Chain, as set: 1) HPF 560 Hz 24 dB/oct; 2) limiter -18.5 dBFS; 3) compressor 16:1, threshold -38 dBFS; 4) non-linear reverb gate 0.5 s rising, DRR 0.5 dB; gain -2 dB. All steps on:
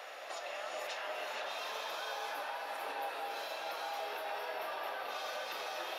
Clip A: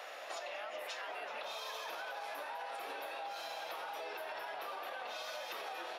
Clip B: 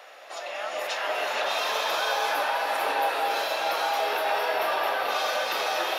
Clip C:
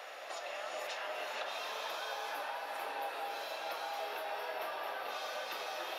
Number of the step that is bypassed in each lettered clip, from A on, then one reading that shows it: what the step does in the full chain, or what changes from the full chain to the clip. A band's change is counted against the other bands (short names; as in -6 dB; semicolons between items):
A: 4, loudness change -3.0 LU; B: 3, mean gain reduction 12.5 dB; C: 2, mean gain reduction 2.5 dB